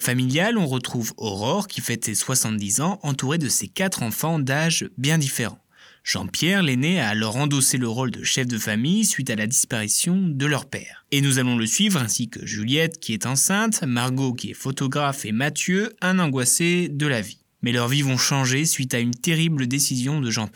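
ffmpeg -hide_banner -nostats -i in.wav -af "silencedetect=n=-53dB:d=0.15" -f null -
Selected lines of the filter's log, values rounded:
silence_start: 17.42
silence_end: 17.62 | silence_duration: 0.20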